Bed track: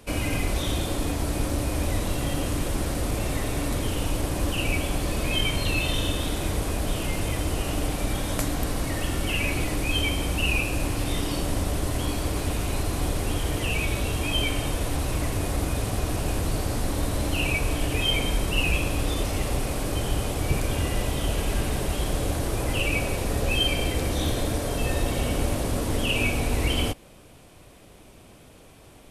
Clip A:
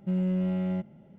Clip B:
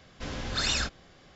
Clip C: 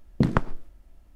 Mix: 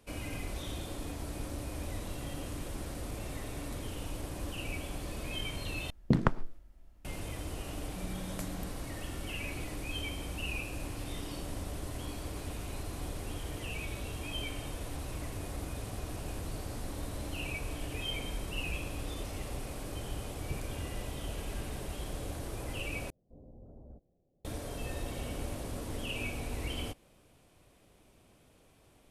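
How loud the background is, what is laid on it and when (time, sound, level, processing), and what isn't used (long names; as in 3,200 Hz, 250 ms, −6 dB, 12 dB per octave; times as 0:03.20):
bed track −13 dB
0:05.90: overwrite with C −4.5 dB
0:07.88: mix in A −6 dB + downward compressor 2 to 1, threshold −46 dBFS
0:23.10: overwrite with B −16.5 dB + Butterworth low-pass 670 Hz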